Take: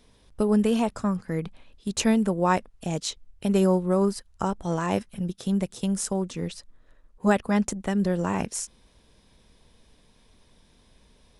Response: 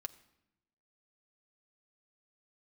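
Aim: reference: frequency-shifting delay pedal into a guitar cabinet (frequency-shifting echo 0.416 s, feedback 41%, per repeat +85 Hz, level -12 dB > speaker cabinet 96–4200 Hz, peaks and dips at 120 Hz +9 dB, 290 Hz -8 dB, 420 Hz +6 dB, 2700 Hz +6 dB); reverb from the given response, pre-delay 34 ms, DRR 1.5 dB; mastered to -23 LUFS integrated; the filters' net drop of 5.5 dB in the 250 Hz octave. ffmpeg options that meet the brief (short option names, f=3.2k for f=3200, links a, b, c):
-filter_complex "[0:a]equalizer=f=250:t=o:g=-7.5,asplit=2[a][b];[1:a]atrim=start_sample=2205,adelay=34[c];[b][c]afir=irnorm=-1:irlink=0,volume=1.5dB[d];[a][d]amix=inputs=2:normalize=0,asplit=5[e][f][g][h][i];[f]adelay=416,afreqshift=85,volume=-12dB[j];[g]adelay=832,afreqshift=170,volume=-19.7dB[k];[h]adelay=1248,afreqshift=255,volume=-27.5dB[l];[i]adelay=1664,afreqshift=340,volume=-35.2dB[m];[e][j][k][l][m]amix=inputs=5:normalize=0,highpass=96,equalizer=f=120:t=q:w=4:g=9,equalizer=f=290:t=q:w=4:g=-8,equalizer=f=420:t=q:w=4:g=6,equalizer=f=2.7k:t=q:w=4:g=6,lowpass=f=4.2k:w=0.5412,lowpass=f=4.2k:w=1.3066,volume=2.5dB"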